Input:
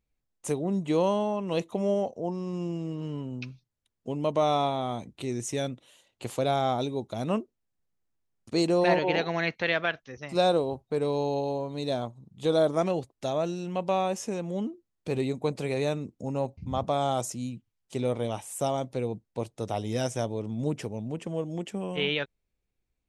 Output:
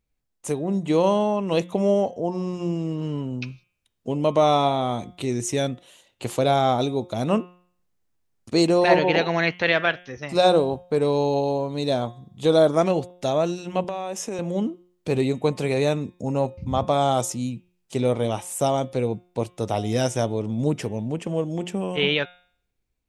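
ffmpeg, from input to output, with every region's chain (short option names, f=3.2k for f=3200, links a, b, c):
-filter_complex "[0:a]asettb=1/sr,asplit=3[a][b][c];[a]atrim=end=13.844[d];[b]atrim=start=13.84:end=14.39,asetpts=PTS-STARTPTS,afade=t=in:d=0.004:c=qsin,afade=t=out:st=0.546:d=0.004:c=qsin,highpass=230,bandreject=f=4.4k:w=11,acompressor=threshold=-31dB:ratio=12:attack=3.2:release=140:knee=1:detection=peak[e];[c]atrim=start=14.386[f];[d][e]acrossfade=d=0.004:c1=hsin:c2=qsin[g];[g][f]acrossfade=d=0.004:c1=qsin:c2=hsin,bandreject=f=178.3:t=h:w=4,bandreject=f=356.6:t=h:w=4,bandreject=f=534.9:t=h:w=4,bandreject=f=713.2:t=h:w=4,bandreject=f=891.5:t=h:w=4,bandreject=f=1.0698k:t=h:w=4,bandreject=f=1.2481k:t=h:w=4,bandreject=f=1.4264k:t=h:w=4,bandreject=f=1.6047k:t=h:w=4,bandreject=f=1.783k:t=h:w=4,bandreject=f=1.9613k:t=h:w=4,bandreject=f=2.1396k:t=h:w=4,bandreject=f=2.3179k:t=h:w=4,bandreject=f=2.4962k:t=h:w=4,bandreject=f=2.6745k:t=h:w=4,bandreject=f=2.8528k:t=h:w=4,bandreject=f=3.0311k:t=h:w=4,bandreject=f=3.2094k:t=h:w=4,bandreject=f=3.3877k:t=h:w=4,bandreject=f=3.566k:t=h:w=4,bandreject=f=3.7443k:t=h:w=4,dynaudnorm=f=250:g=7:m=4dB,volume=2.5dB"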